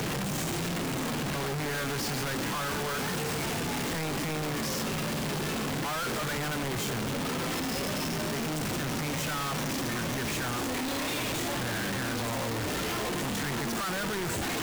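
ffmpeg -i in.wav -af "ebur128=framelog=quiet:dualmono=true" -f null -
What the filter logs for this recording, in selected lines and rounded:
Integrated loudness:
  I:         -27.8 LUFS
  Threshold: -37.8 LUFS
Loudness range:
  LRA:         0.2 LU
  Threshold: -47.8 LUFS
  LRA low:   -27.9 LUFS
  LRA high:  -27.7 LUFS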